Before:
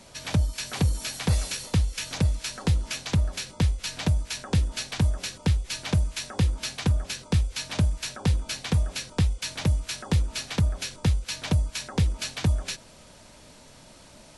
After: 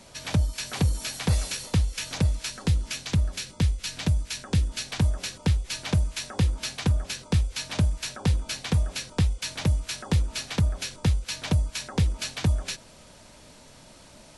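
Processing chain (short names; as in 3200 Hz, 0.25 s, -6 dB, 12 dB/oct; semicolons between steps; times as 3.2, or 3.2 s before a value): 2.5–4.87 bell 780 Hz -4.5 dB 1.8 oct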